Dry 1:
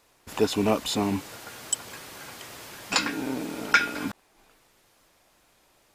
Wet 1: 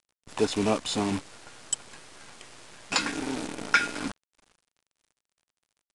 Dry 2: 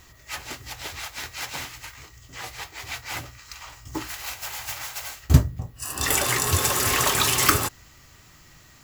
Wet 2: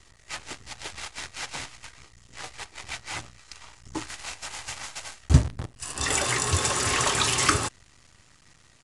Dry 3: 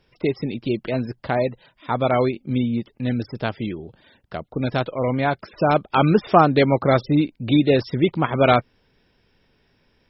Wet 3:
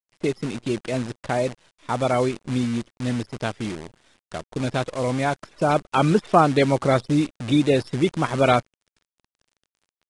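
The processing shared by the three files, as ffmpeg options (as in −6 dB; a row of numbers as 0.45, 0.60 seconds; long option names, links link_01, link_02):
-af "acrusher=bits=6:dc=4:mix=0:aa=0.000001,aresample=22050,aresample=44100,volume=-2dB"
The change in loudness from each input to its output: −2.0, −2.5, −2.0 LU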